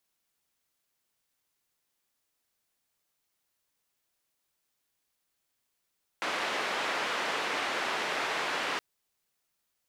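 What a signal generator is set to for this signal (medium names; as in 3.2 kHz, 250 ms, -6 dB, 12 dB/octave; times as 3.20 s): noise band 360–2200 Hz, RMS -32 dBFS 2.57 s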